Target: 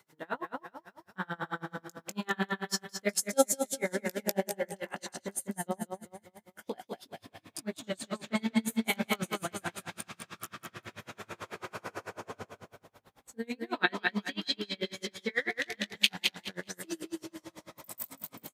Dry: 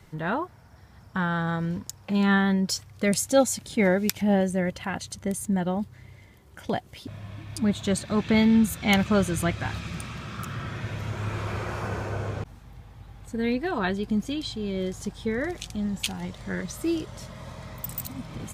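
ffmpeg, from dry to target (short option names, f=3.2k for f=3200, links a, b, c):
-filter_complex "[0:a]highpass=270,highshelf=f=8.5k:g=9.5,flanger=delay=17.5:depth=4.8:speed=2.2,asettb=1/sr,asplit=3[a][b][c];[a]atrim=end=13.734[d];[b]atrim=start=13.73:end=16.36,asetpts=PTS-STARTPTS,afade=t=in:d=0.004:c=qsin,afade=t=out:st=2.626:d=0.004:c=qsin,equalizer=f=2k:t=o:w=1:g=12,equalizer=f=4k:t=o:w=1:g=9,equalizer=f=8k:t=o:w=1:g=-5[e];[c]atrim=start=16.356[f];[d][e]acrossfade=d=0.004:c1=hsin:c2=qsin[g];[g][f]acrossfade=d=0.004:c1=qsin:c2=hsin,aecho=1:1:198|396|594|792|990|1188:0.631|0.29|0.134|0.0614|0.0283|0.013,aeval=exprs='val(0)*pow(10,-33*(0.5-0.5*cos(2*PI*9.1*n/s))/20)':c=same"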